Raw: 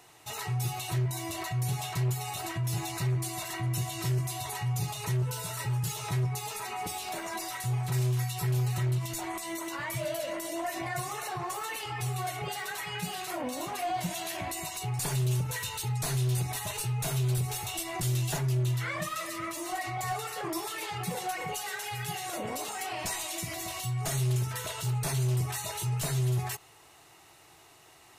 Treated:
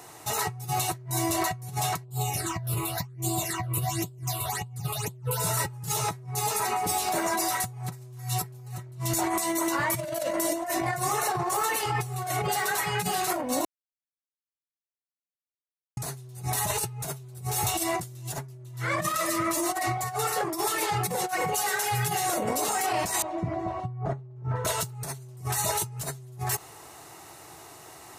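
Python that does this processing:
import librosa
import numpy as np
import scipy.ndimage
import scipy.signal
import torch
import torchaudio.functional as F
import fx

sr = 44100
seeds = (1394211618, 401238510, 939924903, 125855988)

y = fx.phaser_stages(x, sr, stages=8, low_hz=220.0, high_hz=1900.0, hz=fx.line((2.04, 0.59), (5.39, 2.8)), feedback_pct=25, at=(2.04, 5.39), fade=0.02)
y = fx.lowpass(y, sr, hz=1000.0, slope=12, at=(23.22, 24.65))
y = fx.edit(y, sr, fx.silence(start_s=13.65, length_s=2.32), tone=tone)
y = fx.highpass(y, sr, hz=72.0, slope=6)
y = fx.peak_eq(y, sr, hz=2900.0, db=-8.0, octaves=1.2)
y = fx.over_compress(y, sr, threshold_db=-37.0, ratio=-0.5)
y = F.gain(torch.from_numpy(y), 7.5).numpy()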